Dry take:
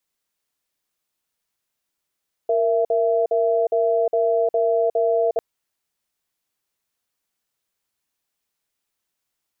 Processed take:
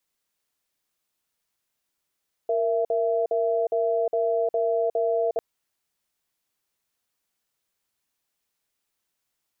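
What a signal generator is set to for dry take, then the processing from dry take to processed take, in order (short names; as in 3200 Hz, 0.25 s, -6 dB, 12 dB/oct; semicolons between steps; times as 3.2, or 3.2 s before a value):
cadence 465 Hz, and 668 Hz, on 0.36 s, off 0.05 s, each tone -19 dBFS 2.90 s
limiter -17.5 dBFS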